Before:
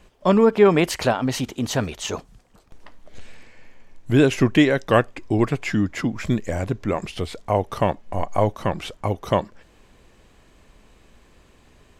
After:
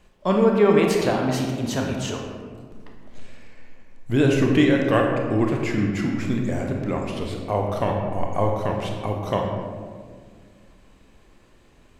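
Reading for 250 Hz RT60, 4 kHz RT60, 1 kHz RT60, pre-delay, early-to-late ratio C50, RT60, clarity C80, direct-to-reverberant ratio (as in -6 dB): 2.8 s, 0.90 s, 1.6 s, 23 ms, 2.5 dB, 1.9 s, 4.0 dB, 0.5 dB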